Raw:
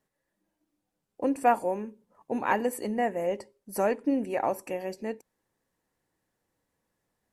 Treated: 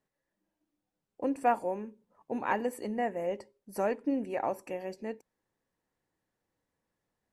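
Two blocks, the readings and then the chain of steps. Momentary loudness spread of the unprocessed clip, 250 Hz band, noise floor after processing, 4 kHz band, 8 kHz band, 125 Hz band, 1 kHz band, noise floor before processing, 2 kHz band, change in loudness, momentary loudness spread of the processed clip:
13 LU, -4.0 dB, under -85 dBFS, -5.0 dB, -8.5 dB, -4.0 dB, -4.0 dB, -83 dBFS, -4.5 dB, -4.0 dB, 13 LU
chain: high shelf 8100 Hz -8.5 dB; gain -4 dB

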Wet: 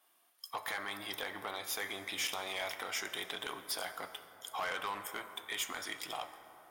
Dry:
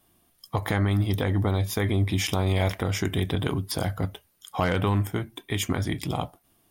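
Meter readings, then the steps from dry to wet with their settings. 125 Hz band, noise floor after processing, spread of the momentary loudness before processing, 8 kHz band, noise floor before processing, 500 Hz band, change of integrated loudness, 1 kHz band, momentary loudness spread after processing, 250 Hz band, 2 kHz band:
-38.5 dB, -71 dBFS, 9 LU, -5.0 dB, -66 dBFS, -15.0 dB, -12.5 dB, -8.0 dB, 9 LU, -24.5 dB, -5.0 dB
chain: HPF 910 Hz 12 dB/oct; in parallel at +2 dB: compressor, threshold -41 dBFS, peak gain reduction 15 dB; on the sum: soft clip -24 dBFS, distortion -11 dB; plate-style reverb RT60 4.7 s, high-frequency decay 0.35×, DRR 9.5 dB; mismatched tape noise reduction decoder only; gain -5.5 dB

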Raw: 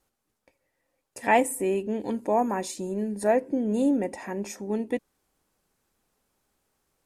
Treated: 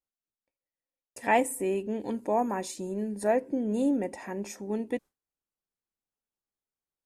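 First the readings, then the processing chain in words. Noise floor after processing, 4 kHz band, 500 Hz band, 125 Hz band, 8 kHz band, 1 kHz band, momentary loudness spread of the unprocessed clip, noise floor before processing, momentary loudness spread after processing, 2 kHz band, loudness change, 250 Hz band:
under -85 dBFS, -3.0 dB, -3.0 dB, -3.0 dB, -3.0 dB, -3.0 dB, 10 LU, -80 dBFS, 10 LU, -3.0 dB, -3.0 dB, -3.0 dB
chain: gate with hold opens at -38 dBFS; gain -3 dB

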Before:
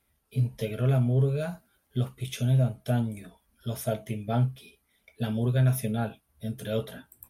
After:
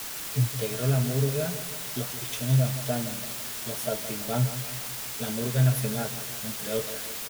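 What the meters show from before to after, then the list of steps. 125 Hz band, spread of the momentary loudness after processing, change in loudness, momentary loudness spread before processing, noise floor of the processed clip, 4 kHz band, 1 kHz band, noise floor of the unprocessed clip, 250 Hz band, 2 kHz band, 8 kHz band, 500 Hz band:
-1.0 dB, 8 LU, +0.5 dB, 13 LU, -36 dBFS, +9.0 dB, +1.5 dB, -73 dBFS, -1.5 dB, +5.5 dB, +13.0 dB, +1.0 dB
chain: spectral noise reduction 10 dB; comb 6.6 ms, depth 35%; requantised 6-bit, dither triangular; feedback echo 0.167 s, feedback 51%, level -12 dB

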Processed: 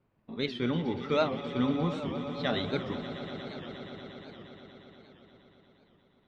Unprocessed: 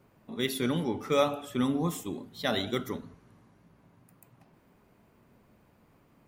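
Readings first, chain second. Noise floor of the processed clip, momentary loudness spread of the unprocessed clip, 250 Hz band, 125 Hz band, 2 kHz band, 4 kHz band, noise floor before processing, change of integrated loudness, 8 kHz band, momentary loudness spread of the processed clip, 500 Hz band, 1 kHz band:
-68 dBFS, 12 LU, 0.0 dB, +1.0 dB, -0.5 dB, -1.5 dB, -64 dBFS, -1.5 dB, under -15 dB, 18 LU, -0.5 dB, -1.0 dB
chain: LPF 4400 Hz 24 dB/oct; low shelf 110 Hz +5.5 dB; gate -58 dBFS, range -10 dB; on a send: swelling echo 0.118 s, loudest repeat 5, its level -15 dB; on the sum: record warp 78 rpm, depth 160 cents; gain -2 dB

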